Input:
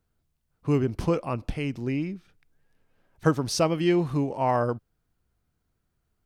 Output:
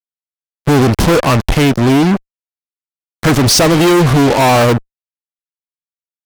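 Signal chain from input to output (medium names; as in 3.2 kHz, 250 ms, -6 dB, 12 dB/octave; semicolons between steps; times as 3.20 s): 1.73–2.13 s: peaking EQ 1.7 kHz -11 dB -> -4.5 dB 1.8 oct; fuzz box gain 41 dB, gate -40 dBFS; trim +5.5 dB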